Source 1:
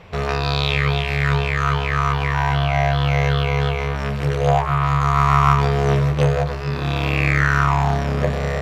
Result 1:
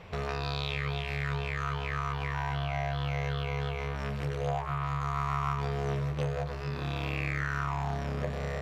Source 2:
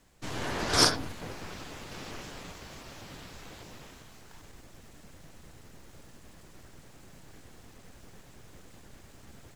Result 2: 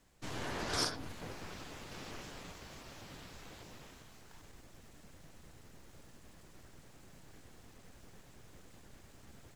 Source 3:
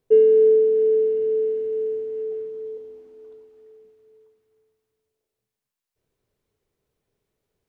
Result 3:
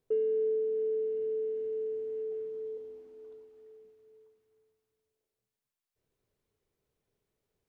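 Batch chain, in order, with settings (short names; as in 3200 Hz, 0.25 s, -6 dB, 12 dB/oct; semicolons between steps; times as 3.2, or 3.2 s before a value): compressor 2:1, threshold -31 dBFS; gain -5 dB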